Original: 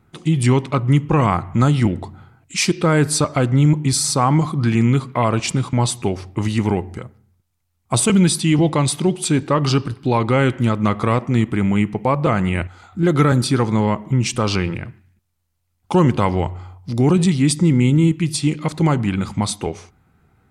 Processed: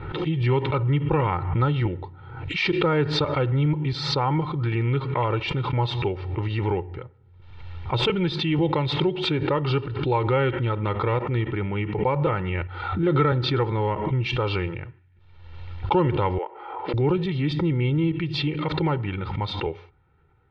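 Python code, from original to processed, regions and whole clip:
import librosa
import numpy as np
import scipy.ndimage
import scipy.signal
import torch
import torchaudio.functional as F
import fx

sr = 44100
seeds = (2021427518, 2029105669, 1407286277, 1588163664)

y = fx.chain(x, sr, fx.highpass(hz=390.0, slope=24),
    fx.air_absorb(metres=380.0), at=(16.38, 16.94))
y = scipy.signal.sosfilt(scipy.signal.butter(6, 3700.0, 'lowpass', fs=sr, output='sos'), y)
y = y + 0.77 * np.pad(y, (int(2.2 * sr / 1000.0), 0))[:len(y)]
y = fx.pre_swell(y, sr, db_per_s=49.0)
y = y * librosa.db_to_amplitude(-7.5)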